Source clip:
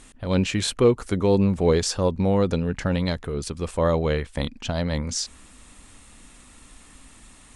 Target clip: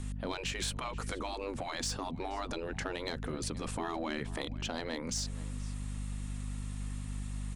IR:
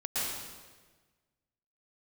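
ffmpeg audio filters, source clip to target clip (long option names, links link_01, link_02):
-filter_complex "[0:a]aeval=exprs='val(0)+0.02*(sin(2*PI*50*n/s)+sin(2*PI*2*50*n/s)/2+sin(2*PI*3*50*n/s)/3+sin(2*PI*4*50*n/s)/4+sin(2*PI*5*50*n/s)/5)':channel_layout=same,afftfilt=real='re*lt(hypot(re,im),0.224)':imag='im*lt(hypot(re,im),0.224)':win_size=1024:overlap=0.75,asplit=2[link_01][link_02];[link_02]adelay=478.1,volume=-20dB,highshelf=frequency=4000:gain=-10.8[link_03];[link_01][link_03]amix=inputs=2:normalize=0,asoftclip=type=tanh:threshold=-19.5dB,acrossover=split=310[link_04][link_05];[link_05]acompressor=threshold=-34dB:ratio=2.5[link_06];[link_04][link_06]amix=inputs=2:normalize=0,volume=-2dB"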